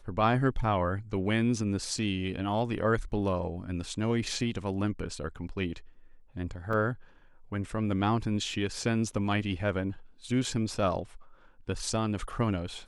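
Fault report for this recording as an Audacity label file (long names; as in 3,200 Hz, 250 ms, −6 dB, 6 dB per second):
6.730000	6.730000	drop-out 3.5 ms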